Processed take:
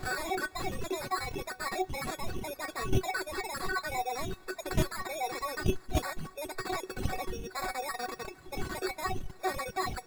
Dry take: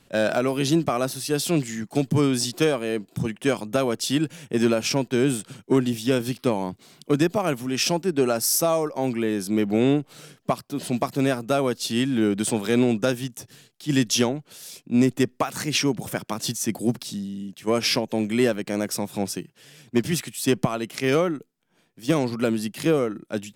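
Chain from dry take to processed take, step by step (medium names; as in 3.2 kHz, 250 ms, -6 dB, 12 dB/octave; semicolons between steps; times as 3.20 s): jump at every zero crossing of -24 dBFS; wind noise 82 Hz -23 dBFS; peaking EQ 1.1 kHz +4.5 dB 0.42 oct; de-hum 74.44 Hz, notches 40; level held to a coarse grid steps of 12 dB; sample-rate reducer 1.3 kHz, jitter 0%; feedback comb 160 Hz, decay 0.42 s, harmonics all, mix 90%; speed mistake 33 rpm record played at 78 rpm; reverb removal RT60 2 s; trim +4 dB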